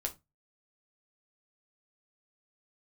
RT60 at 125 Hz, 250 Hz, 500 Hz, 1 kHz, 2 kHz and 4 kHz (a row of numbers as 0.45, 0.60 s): 0.35, 0.25, 0.20, 0.20, 0.20, 0.15 s